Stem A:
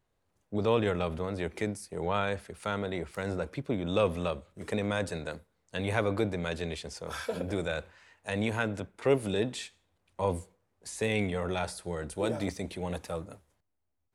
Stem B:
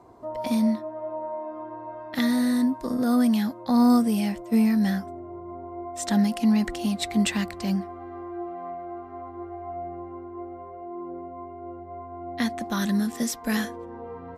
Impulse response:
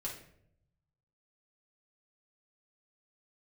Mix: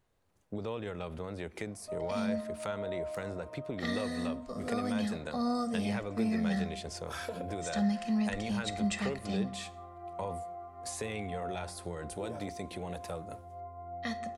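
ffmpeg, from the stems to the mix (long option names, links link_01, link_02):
-filter_complex "[0:a]acompressor=threshold=-39dB:ratio=4,volume=2dB[link_01];[1:a]lowpass=frequency=8600:width=0.5412,lowpass=frequency=8600:width=1.3066,aecho=1:1:1.6:0.73,adelay=1650,volume=-13dB,asplit=2[link_02][link_03];[link_03]volume=-4.5dB[link_04];[2:a]atrim=start_sample=2205[link_05];[link_04][link_05]afir=irnorm=-1:irlink=0[link_06];[link_01][link_02][link_06]amix=inputs=3:normalize=0"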